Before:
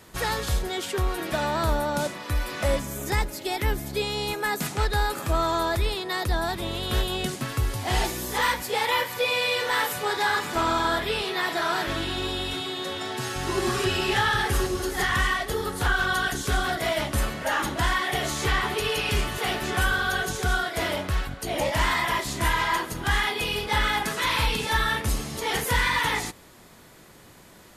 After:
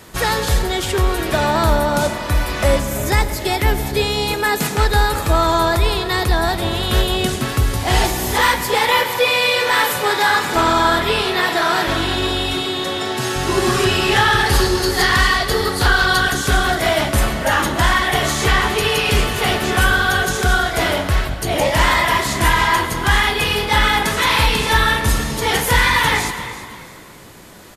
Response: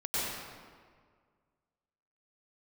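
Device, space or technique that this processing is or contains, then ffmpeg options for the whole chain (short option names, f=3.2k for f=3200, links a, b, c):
saturated reverb return: -filter_complex "[0:a]asettb=1/sr,asplit=3[a][b][c];[a]atrim=end=14.464[d];[b]atrim=start=14.46:end=16.2,asetpts=PTS-STARTPTS,afade=t=in:d=0.004:c=qsin,afade=t=out:st=1.736:d=0.004:c=qsin,equalizer=f=4.5k:w=4.5:g=11.5[e];[c]atrim=start=16.196[f];[d][e]acrossfade=d=0.004:c1=hsin:c2=qsin[g];[g][f]acrossfade=d=0.004:c1=qsin:c2=hsin,asplit=4[h][i][j][k];[i]adelay=333,afreqshift=40,volume=-14.5dB[l];[j]adelay=666,afreqshift=80,volume=-23.4dB[m];[k]adelay=999,afreqshift=120,volume=-32.2dB[n];[h][l][m][n]amix=inputs=4:normalize=0,asplit=2[o][p];[1:a]atrim=start_sample=2205[q];[p][q]afir=irnorm=-1:irlink=0,asoftclip=type=tanh:threshold=-7.5dB,volume=-17.5dB[r];[o][r]amix=inputs=2:normalize=0,volume=8dB"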